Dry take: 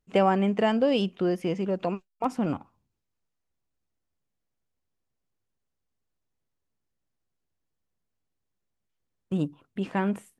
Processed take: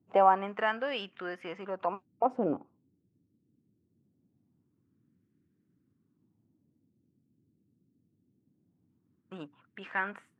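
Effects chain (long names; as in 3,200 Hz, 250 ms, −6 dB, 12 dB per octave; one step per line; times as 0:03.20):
auto-filter band-pass sine 0.23 Hz 270–1,700 Hz
noise in a band 91–310 Hz −78 dBFS
level +5.5 dB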